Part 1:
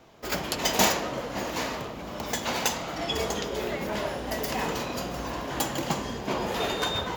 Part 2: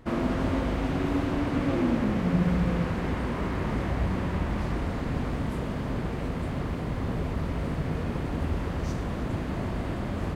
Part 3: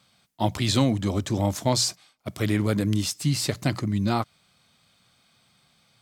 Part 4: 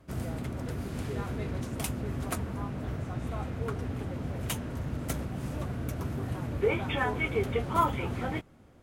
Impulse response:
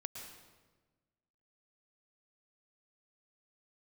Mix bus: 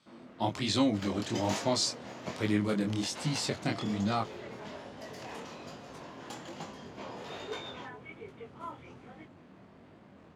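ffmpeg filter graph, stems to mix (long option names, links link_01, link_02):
-filter_complex "[0:a]adelay=700,volume=-11dB[link_01];[1:a]asoftclip=type=tanh:threshold=-25.5dB,volume=-17.5dB[link_02];[2:a]volume=-2dB[link_03];[3:a]adelay=850,volume=-14.5dB[link_04];[link_01][link_02][link_03][link_04]amix=inputs=4:normalize=0,flanger=delay=18.5:depth=7.8:speed=1.2,highpass=150,lowpass=7200"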